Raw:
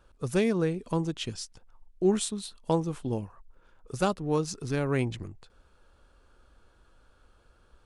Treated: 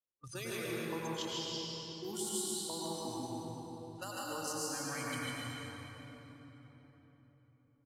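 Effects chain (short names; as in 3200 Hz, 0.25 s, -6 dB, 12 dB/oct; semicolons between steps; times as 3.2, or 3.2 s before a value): CVSD 64 kbps; low-pass opened by the level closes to 560 Hz, open at -27 dBFS; bell 140 Hz +9.5 dB 2.9 oct; spectral noise reduction 22 dB; differentiator; notches 50/100/150 Hz; echo 0.147 s -6.5 dB; level quantiser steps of 10 dB; transient shaper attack -2 dB, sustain +6 dB; compressor, threshold -54 dBFS, peak gain reduction 14.5 dB; reverb RT60 4.2 s, pre-delay 90 ms, DRR -5.5 dB; gain +13 dB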